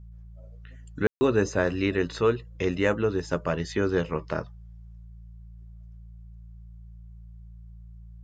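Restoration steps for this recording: de-hum 56.5 Hz, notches 3; room tone fill 1.07–1.21 s

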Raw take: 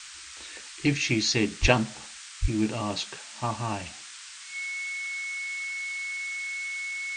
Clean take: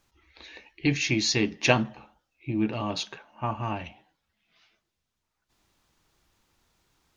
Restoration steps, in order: band-stop 2.2 kHz, Q 30; 1.61–1.73 s: high-pass 140 Hz 24 dB/octave; 2.41–2.53 s: high-pass 140 Hz 24 dB/octave; noise print and reduce 30 dB

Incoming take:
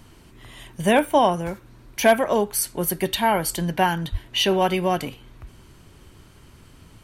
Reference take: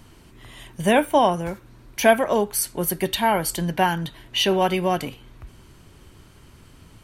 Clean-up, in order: clip repair -6.5 dBFS; de-plosive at 4.11 s

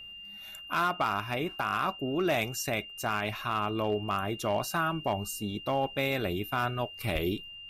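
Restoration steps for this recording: clip repair -20.5 dBFS; band-stop 2.8 kHz, Q 30

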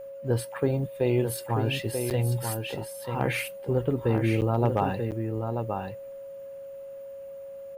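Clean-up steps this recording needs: clip repair -13 dBFS; band-stop 550 Hz, Q 30; interpolate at 2.10/4.41/5.11 s, 8.5 ms; inverse comb 937 ms -6 dB

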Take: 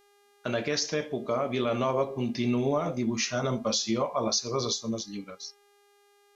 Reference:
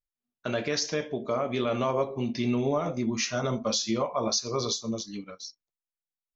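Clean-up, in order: de-hum 405.9 Hz, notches 36

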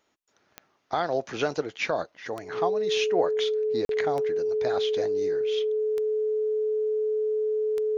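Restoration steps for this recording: de-click; band-stop 430 Hz, Q 30; interpolate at 3.85 s, 42 ms

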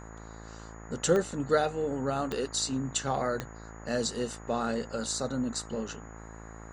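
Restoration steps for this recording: de-click; de-hum 55 Hz, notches 25; band-stop 6.8 kHz, Q 30; noise print and reduce 30 dB

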